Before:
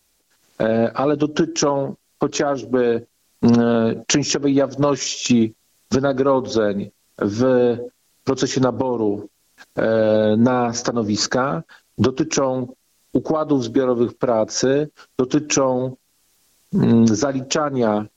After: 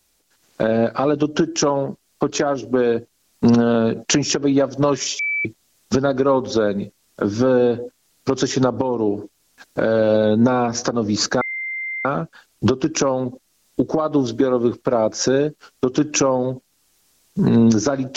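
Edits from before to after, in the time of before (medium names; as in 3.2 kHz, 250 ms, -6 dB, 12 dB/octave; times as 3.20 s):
5.19–5.45 s: bleep 2.31 kHz -19 dBFS
11.41 s: add tone 2.09 kHz -24 dBFS 0.64 s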